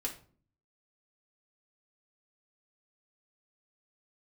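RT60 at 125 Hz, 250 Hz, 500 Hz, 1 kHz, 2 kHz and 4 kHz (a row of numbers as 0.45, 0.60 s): 0.80, 0.75, 0.50, 0.40, 0.35, 0.30 s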